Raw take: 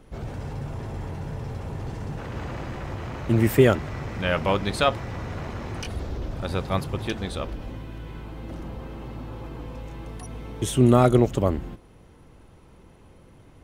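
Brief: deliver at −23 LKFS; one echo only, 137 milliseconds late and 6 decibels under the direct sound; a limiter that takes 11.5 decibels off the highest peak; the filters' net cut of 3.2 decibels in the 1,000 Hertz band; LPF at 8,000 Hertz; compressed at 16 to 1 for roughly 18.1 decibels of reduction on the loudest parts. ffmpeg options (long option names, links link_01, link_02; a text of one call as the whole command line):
ffmpeg -i in.wav -af "lowpass=8000,equalizer=frequency=1000:width_type=o:gain=-4.5,acompressor=threshold=-30dB:ratio=16,alimiter=level_in=6dB:limit=-24dB:level=0:latency=1,volume=-6dB,aecho=1:1:137:0.501,volume=16dB" out.wav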